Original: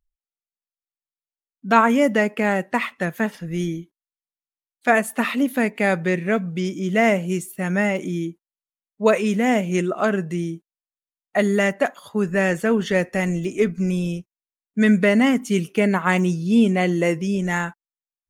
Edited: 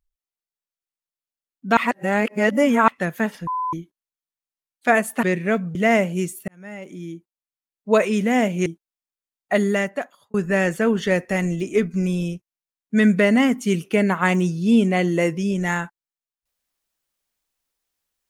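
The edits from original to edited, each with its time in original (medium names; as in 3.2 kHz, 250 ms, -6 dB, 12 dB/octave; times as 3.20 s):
1.77–2.88 s: reverse
3.47–3.73 s: bleep 1.01 kHz -21.5 dBFS
5.23–6.04 s: delete
6.56–6.88 s: delete
7.61–9.05 s: fade in
9.79–10.50 s: delete
11.45–12.18 s: fade out linear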